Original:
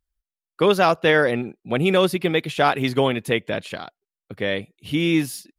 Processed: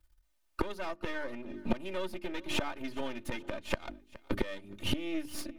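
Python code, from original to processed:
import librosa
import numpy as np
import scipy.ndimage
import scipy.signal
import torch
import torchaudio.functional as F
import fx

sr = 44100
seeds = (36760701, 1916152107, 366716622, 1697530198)

y = np.where(x < 0.0, 10.0 ** (-12.0 / 20.0) * x, x)
y = fx.high_shelf(y, sr, hz=3100.0, db=-5.0)
y = fx.hum_notches(y, sr, base_hz=50, count=9)
y = y + 0.83 * np.pad(y, (int(3.3 * sr / 1000.0), 0))[:len(y)]
y = fx.rider(y, sr, range_db=5, speed_s=2.0)
y = fx.gate_flip(y, sr, shuts_db=-19.0, range_db=-24)
y = fx.echo_feedback(y, sr, ms=418, feedback_pct=42, wet_db=-23.5)
y = fx.band_squash(y, sr, depth_pct=40)
y = F.gain(torch.from_numpy(y), 6.0).numpy()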